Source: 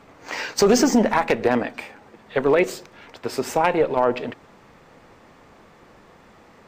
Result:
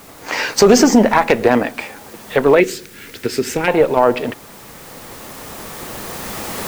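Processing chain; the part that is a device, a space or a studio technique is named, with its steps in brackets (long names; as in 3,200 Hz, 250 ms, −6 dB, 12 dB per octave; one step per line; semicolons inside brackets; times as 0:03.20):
0:02.60–0:03.68: flat-topped bell 820 Hz −15 dB 1.3 octaves
cheap recorder with automatic gain (white noise bed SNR 28 dB; camcorder AGC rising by 6.3 dB per second)
level +6.5 dB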